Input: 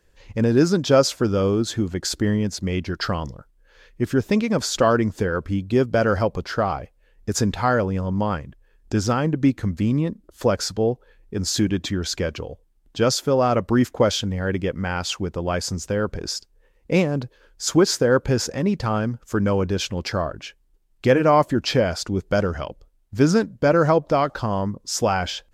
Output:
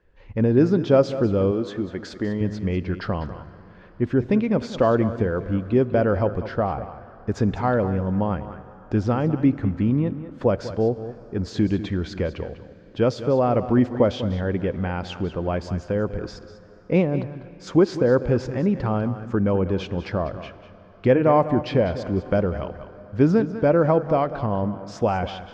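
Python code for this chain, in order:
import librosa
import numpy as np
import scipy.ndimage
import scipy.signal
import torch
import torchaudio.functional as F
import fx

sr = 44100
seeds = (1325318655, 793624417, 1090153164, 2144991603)

p1 = x + fx.echo_single(x, sr, ms=197, db=-13.5, dry=0)
p2 = fx.rev_plate(p1, sr, seeds[0], rt60_s=4.3, hf_ratio=0.75, predelay_ms=0, drr_db=17.0)
p3 = fx.dynamic_eq(p2, sr, hz=1400.0, q=1.4, threshold_db=-37.0, ratio=4.0, max_db=-6)
p4 = scipy.signal.sosfilt(scipy.signal.butter(2, 2100.0, 'lowpass', fs=sr, output='sos'), p3)
y = fx.low_shelf(p4, sr, hz=180.0, db=-12.0, at=(1.51, 2.41))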